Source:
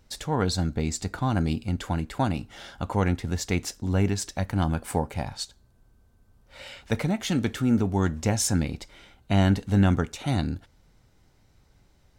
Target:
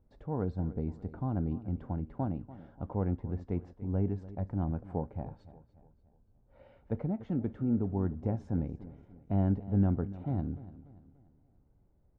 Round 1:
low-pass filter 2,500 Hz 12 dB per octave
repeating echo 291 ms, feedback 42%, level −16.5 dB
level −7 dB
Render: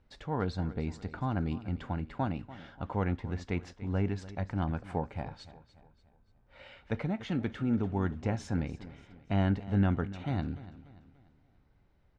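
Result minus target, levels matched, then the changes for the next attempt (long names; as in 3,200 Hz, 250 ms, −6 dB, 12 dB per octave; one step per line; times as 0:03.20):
2,000 Hz band +15.5 dB
change: low-pass filter 660 Hz 12 dB per octave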